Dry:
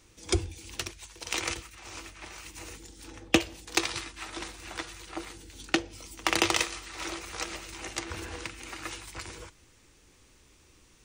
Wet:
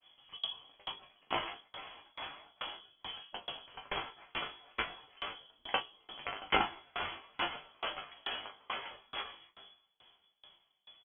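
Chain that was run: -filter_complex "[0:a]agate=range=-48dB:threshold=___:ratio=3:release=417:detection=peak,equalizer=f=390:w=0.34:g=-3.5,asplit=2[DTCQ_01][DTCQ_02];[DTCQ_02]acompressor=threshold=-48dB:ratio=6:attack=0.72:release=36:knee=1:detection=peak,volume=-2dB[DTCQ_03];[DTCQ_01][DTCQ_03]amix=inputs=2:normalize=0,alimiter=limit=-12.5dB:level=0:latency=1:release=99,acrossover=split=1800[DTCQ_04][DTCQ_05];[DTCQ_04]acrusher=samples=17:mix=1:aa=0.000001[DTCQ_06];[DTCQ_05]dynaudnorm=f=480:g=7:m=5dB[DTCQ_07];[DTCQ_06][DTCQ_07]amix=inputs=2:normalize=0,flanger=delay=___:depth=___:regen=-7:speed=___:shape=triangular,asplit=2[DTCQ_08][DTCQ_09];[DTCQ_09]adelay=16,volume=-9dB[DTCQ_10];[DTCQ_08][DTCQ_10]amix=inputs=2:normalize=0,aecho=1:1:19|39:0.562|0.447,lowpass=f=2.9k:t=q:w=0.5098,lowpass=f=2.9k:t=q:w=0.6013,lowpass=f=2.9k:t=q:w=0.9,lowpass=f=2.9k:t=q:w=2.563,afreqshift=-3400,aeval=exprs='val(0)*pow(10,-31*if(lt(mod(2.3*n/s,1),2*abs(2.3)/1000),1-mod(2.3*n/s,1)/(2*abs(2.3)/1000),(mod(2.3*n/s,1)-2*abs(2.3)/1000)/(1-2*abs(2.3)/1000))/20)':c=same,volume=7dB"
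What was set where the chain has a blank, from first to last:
-53dB, 7, 3.8, 0.43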